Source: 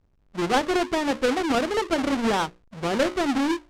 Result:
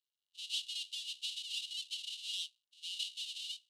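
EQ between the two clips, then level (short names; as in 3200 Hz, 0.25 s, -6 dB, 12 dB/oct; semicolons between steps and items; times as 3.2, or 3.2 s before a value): rippled Chebyshev high-pass 2800 Hz, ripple 6 dB; tilt -4.5 dB/oct; +8.0 dB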